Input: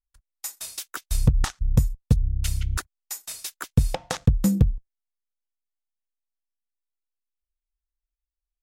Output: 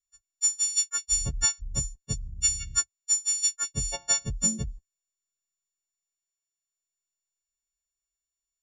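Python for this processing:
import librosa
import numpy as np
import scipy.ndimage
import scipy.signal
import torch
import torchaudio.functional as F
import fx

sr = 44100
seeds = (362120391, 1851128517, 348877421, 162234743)

y = fx.freq_snap(x, sr, grid_st=4)
y = fx.ladder_lowpass(y, sr, hz=6800.0, resonance_pct=90)
y = y * 10.0 ** (2.5 / 20.0)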